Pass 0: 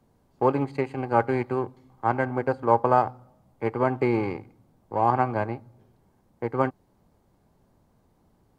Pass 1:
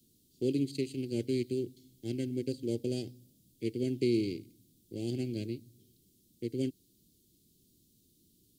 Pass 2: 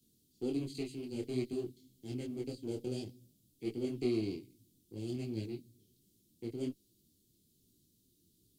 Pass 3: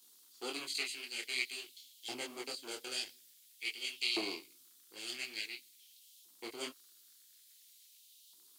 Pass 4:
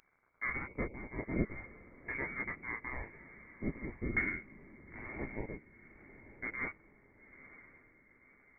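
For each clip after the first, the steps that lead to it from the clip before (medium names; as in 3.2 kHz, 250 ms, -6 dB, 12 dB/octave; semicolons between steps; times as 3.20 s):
Chebyshev band-stop 340–3400 Hz, order 3; tilt EQ +3 dB/octave; trim +3 dB
in parallel at -7 dB: one-sided clip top -39 dBFS; on the sum: detune thickener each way 45 cents; trim -3.5 dB
crackle 87 per s -71 dBFS; LFO high-pass saw up 0.48 Hz 920–3100 Hz; trim +12 dB
echo that smears into a reverb 962 ms, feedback 44%, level -15.5 dB; frequency inversion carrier 2.5 kHz; trim +6 dB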